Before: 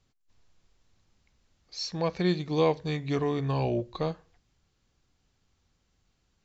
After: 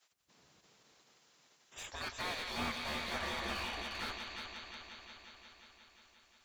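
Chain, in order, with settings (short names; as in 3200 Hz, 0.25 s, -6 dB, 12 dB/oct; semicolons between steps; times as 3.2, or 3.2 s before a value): spectral gate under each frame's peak -25 dB weak; on a send: multi-head echo 0.178 s, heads first and second, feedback 70%, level -11 dB; on the sum: slew limiter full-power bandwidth 12 Hz; gain +8.5 dB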